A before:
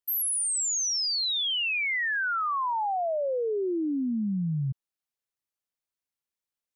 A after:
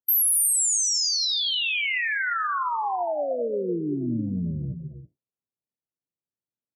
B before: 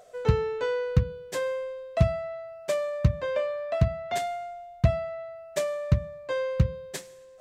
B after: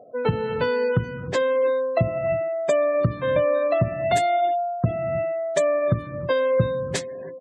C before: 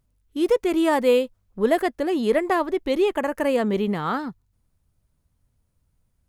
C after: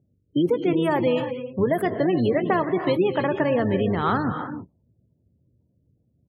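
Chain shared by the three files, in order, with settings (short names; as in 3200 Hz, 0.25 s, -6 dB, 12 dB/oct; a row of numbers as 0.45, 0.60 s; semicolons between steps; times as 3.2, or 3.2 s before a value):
octaver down 1 oct, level -4 dB; compressor 6:1, threshold -28 dBFS; HPF 93 Hz 24 dB/oct; high shelf 9200 Hz +10 dB; non-linear reverb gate 0.35 s rising, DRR 7.5 dB; low-pass opened by the level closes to 460 Hz, open at -27.5 dBFS; doubler 17 ms -13 dB; modulation noise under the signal 33 dB; spectral gate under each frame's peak -30 dB strong; match loudness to -23 LUFS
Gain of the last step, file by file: +3.0, +10.0, +9.0 dB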